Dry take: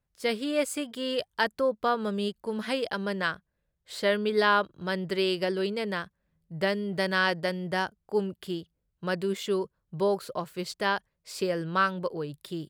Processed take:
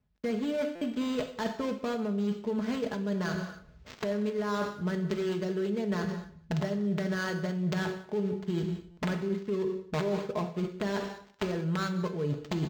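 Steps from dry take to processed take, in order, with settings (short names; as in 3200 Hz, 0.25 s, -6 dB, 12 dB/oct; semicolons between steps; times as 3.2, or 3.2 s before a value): switching dead time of 0.17 ms; recorder AGC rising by 40 dB/s; low shelf 300 Hz +11 dB; wrapped overs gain 10.5 dB; HPF 63 Hz 12 dB/oct; comb 4.7 ms, depth 49%; non-linear reverb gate 0.31 s falling, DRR 7 dB; reverse; compressor 6:1, threshold -30 dBFS, peak gain reduction 17 dB; reverse; outdoor echo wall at 32 m, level -21 dB; stuck buffer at 0.75/8.91, samples 256, times 10; decimation joined by straight lines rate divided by 4×; gain +1 dB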